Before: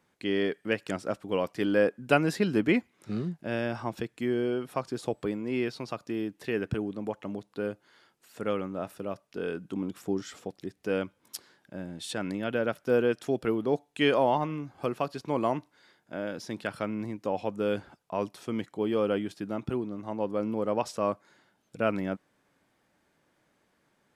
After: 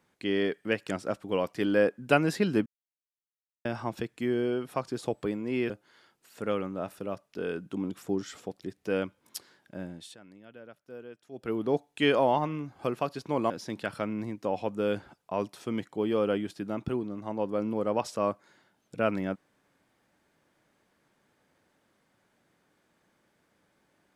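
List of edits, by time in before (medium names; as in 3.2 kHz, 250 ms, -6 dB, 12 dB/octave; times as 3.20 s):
2.66–3.65 s: mute
5.70–7.69 s: delete
11.83–13.63 s: dip -20 dB, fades 0.33 s
15.49–16.31 s: delete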